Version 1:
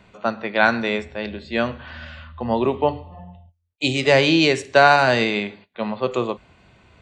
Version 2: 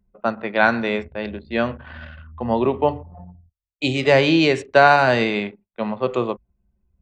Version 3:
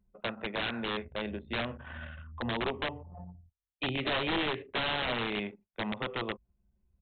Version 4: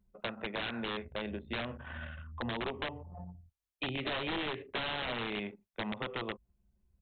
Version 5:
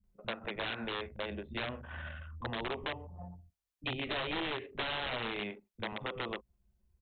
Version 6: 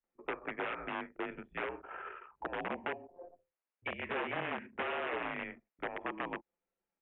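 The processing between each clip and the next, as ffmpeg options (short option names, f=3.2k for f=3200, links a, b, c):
-af "anlmdn=1.58,highshelf=f=4k:g=-9,volume=1dB"
-af "acompressor=threshold=-26dB:ratio=2.5,aresample=8000,aeval=exprs='(mod(9.44*val(0)+1,2)-1)/9.44':c=same,aresample=44100,volume=-5.5dB"
-af "acompressor=threshold=-34dB:ratio=3"
-filter_complex "[0:a]acrossover=split=220[a][b];[b]adelay=40[c];[a][c]amix=inputs=2:normalize=0"
-af "highpass=f=570:t=q:w=0.5412,highpass=f=570:t=q:w=1.307,lowpass=f=2.8k:t=q:w=0.5176,lowpass=f=2.8k:t=q:w=0.7071,lowpass=f=2.8k:t=q:w=1.932,afreqshift=-180,aemphasis=mode=reproduction:type=bsi,volume=2dB"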